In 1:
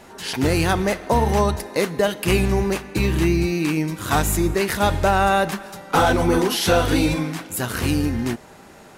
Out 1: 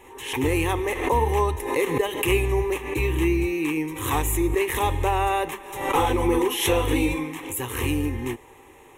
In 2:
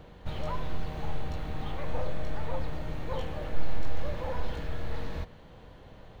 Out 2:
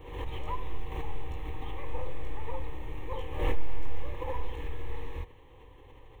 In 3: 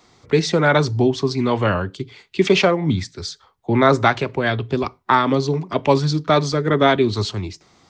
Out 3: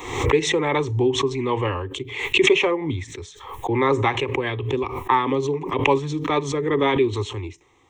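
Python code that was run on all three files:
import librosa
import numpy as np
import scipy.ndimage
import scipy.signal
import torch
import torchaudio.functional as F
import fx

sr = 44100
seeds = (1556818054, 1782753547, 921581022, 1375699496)

y = fx.fixed_phaser(x, sr, hz=970.0, stages=8)
y = fx.pre_swell(y, sr, db_per_s=70.0)
y = y * librosa.db_to_amplitude(-1.0)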